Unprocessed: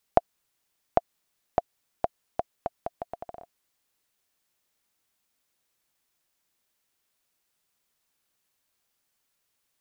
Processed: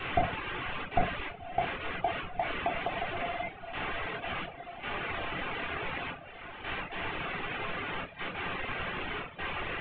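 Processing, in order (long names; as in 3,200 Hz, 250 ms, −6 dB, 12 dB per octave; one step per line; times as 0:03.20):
linear delta modulator 16 kbit/s, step −30.5 dBFS
noise gate with hold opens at −33 dBFS
feedback delay with all-pass diffusion 1,386 ms, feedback 56%, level −10 dB
rectangular room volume 440 cubic metres, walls furnished, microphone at 3.6 metres
reverb reduction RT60 0.74 s
level −3 dB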